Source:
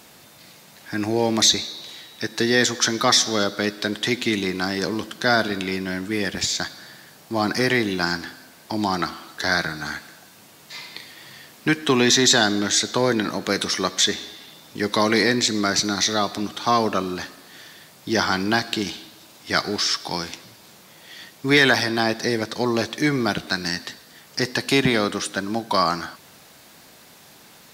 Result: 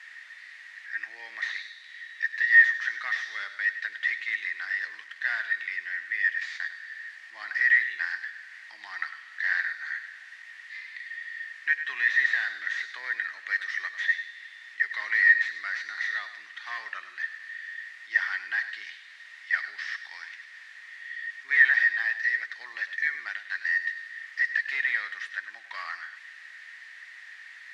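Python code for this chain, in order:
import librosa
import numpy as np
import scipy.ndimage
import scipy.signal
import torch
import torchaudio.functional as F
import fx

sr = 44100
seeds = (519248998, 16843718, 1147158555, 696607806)

p1 = fx.delta_mod(x, sr, bps=64000, step_db=-32.5)
p2 = fx.ladder_bandpass(p1, sr, hz=1900.0, resonance_pct=90)
y = p2 + fx.echo_single(p2, sr, ms=101, db=-12.5, dry=0)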